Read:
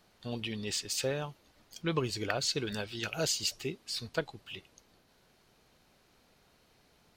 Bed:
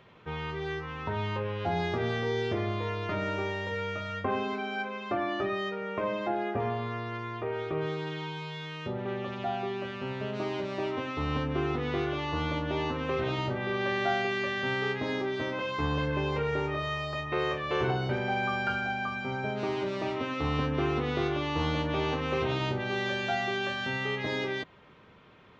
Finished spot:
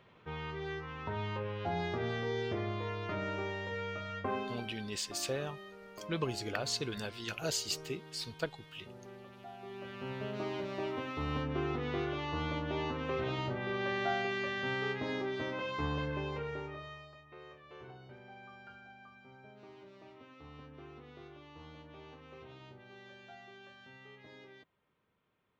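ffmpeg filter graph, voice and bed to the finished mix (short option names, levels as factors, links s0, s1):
-filter_complex "[0:a]adelay=4250,volume=0.668[s0];[1:a]volume=2.11,afade=t=out:st=4.35:d=0.43:silence=0.266073,afade=t=in:st=9.58:d=0.55:silence=0.251189,afade=t=out:st=15.79:d=1.4:silence=0.125893[s1];[s0][s1]amix=inputs=2:normalize=0"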